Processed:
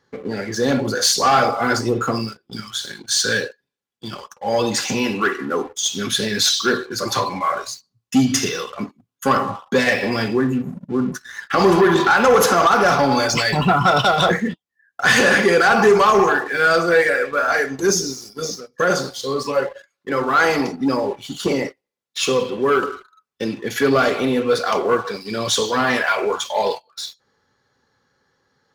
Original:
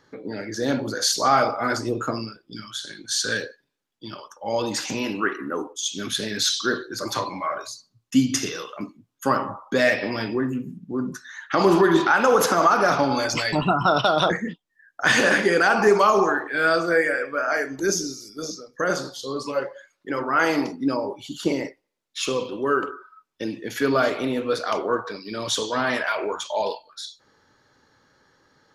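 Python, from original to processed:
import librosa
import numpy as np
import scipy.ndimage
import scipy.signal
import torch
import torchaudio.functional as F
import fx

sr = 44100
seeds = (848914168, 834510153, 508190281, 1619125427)

y = fx.leveller(x, sr, passes=2)
y = fx.notch_comb(y, sr, f0_hz=310.0)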